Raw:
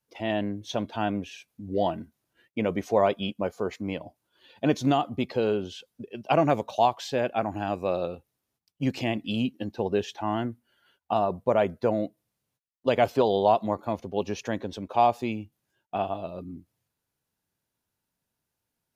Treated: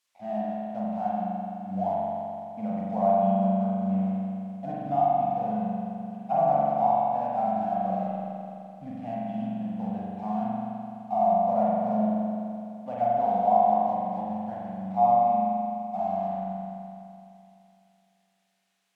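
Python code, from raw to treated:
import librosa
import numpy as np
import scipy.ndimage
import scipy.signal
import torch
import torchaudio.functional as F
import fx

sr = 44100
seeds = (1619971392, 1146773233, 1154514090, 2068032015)

y = fx.double_bandpass(x, sr, hz=380.0, octaves=1.9)
y = np.sign(y) * np.maximum(np.abs(y) - 10.0 ** (-57.5 / 20.0), 0.0)
y = fx.dmg_noise_colour(y, sr, seeds[0], colour='blue', level_db=-70.0)
y = fx.air_absorb(y, sr, metres=60.0)
y = fx.doubler(y, sr, ms=32.0, db=-11)
y = fx.rev_spring(y, sr, rt60_s=2.7, pass_ms=(42,), chirp_ms=65, drr_db=-6.5)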